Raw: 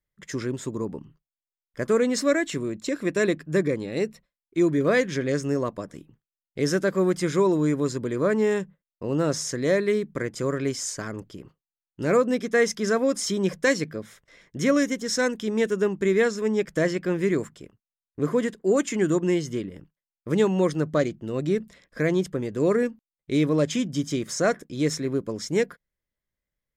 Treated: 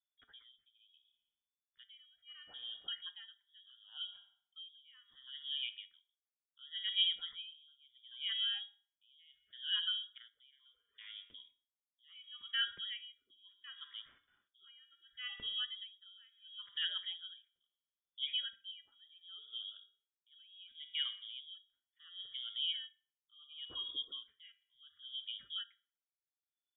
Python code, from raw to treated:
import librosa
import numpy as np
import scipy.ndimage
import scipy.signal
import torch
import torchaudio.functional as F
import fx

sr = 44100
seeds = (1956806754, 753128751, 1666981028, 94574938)

y = fx.spec_gate(x, sr, threshold_db=-25, keep='strong')
y = fx.comb_fb(y, sr, f0_hz=190.0, decay_s=0.57, harmonics='all', damping=0.0, mix_pct=70)
y = fx.wow_flutter(y, sr, seeds[0], rate_hz=2.1, depth_cents=18.0)
y = fx.freq_invert(y, sr, carrier_hz=3500)
y = fx.echo_filtered(y, sr, ms=62, feedback_pct=77, hz=2700.0, wet_db=-18.0)
y = y * 10.0 ** (-29 * (0.5 - 0.5 * np.cos(2.0 * np.pi * 0.71 * np.arange(len(y)) / sr)) / 20.0)
y = y * 10.0 ** (-4.5 / 20.0)